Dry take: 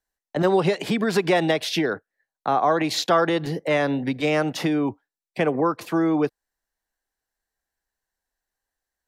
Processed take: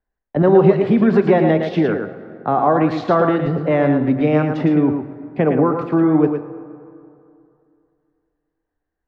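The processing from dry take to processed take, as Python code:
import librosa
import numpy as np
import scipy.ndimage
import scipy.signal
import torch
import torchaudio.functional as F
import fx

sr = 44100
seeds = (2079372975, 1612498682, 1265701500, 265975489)

p1 = scipy.signal.sosfilt(scipy.signal.butter(2, 1800.0, 'lowpass', fs=sr, output='sos'), x)
p2 = fx.low_shelf(p1, sr, hz=400.0, db=9.5)
p3 = p2 + fx.echo_single(p2, sr, ms=112, db=-6.0, dry=0)
p4 = fx.rev_fdn(p3, sr, rt60_s=2.6, lf_ratio=1.0, hf_ratio=0.5, size_ms=76.0, drr_db=10.5)
y = p4 * 10.0 ** (1.0 / 20.0)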